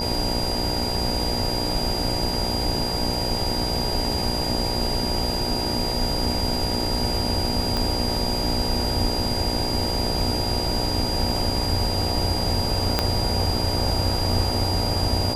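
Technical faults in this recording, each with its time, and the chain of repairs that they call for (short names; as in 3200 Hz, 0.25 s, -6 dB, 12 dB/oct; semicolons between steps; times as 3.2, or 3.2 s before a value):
buzz 60 Hz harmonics 16 -29 dBFS
tone 4800 Hz -27 dBFS
7.77 pop
12.99 pop -4 dBFS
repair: de-click; de-hum 60 Hz, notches 16; notch 4800 Hz, Q 30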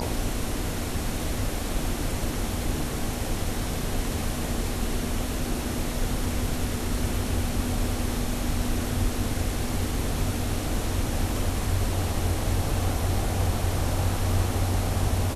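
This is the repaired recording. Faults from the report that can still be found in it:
7.77 pop
12.99 pop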